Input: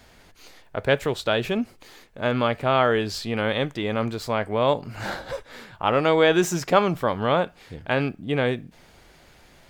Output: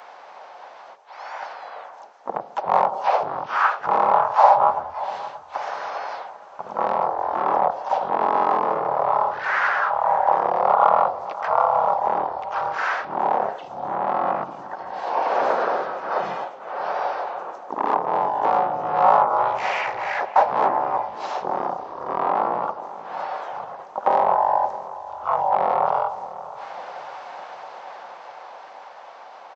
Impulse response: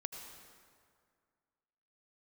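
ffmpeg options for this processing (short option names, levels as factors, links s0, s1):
-filter_complex "[0:a]asetrate=14465,aresample=44100,dynaudnorm=f=270:g=17:m=2.51,asoftclip=type=tanh:threshold=0.211,aresample=16000,aresample=44100,acrossover=split=1600|3600[s0][s1][s2];[s0]acompressor=threshold=0.0631:ratio=4[s3];[s1]acompressor=threshold=0.002:ratio=4[s4];[s2]acompressor=threshold=0.00141:ratio=4[s5];[s3][s4][s5]amix=inputs=3:normalize=0,highpass=f=790:t=q:w=4.9,asplit=2[s6][s7];[s7]adelay=578,lowpass=f=1300:p=1,volume=0.2,asplit=2[s8][s9];[s9]adelay=578,lowpass=f=1300:p=1,volume=0.5,asplit=2[s10][s11];[s11]adelay=578,lowpass=f=1300:p=1,volume=0.5,asplit=2[s12][s13];[s13]adelay=578,lowpass=f=1300:p=1,volume=0.5,asplit=2[s14][s15];[s15]adelay=578,lowpass=f=1300:p=1,volume=0.5[s16];[s8][s10][s12][s14][s16]amix=inputs=5:normalize=0[s17];[s6][s17]amix=inputs=2:normalize=0,asplit=3[s18][s19][s20];[s19]asetrate=33038,aresample=44100,atempo=1.33484,volume=0.447[s21];[s20]asetrate=52444,aresample=44100,atempo=0.840896,volume=0.631[s22];[s18][s21][s22]amix=inputs=3:normalize=0,volume=2.11"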